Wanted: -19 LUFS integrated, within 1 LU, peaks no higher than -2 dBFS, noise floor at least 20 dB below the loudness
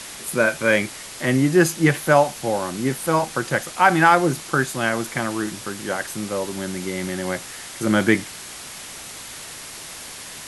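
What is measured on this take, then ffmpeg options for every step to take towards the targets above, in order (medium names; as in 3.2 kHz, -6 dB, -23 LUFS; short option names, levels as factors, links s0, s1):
noise floor -37 dBFS; noise floor target -41 dBFS; loudness -21.0 LUFS; peak level -1.5 dBFS; loudness target -19.0 LUFS
-> -af "afftdn=nr=6:nf=-37"
-af "volume=1.26,alimiter=limit=0.794:level=0:latency=1"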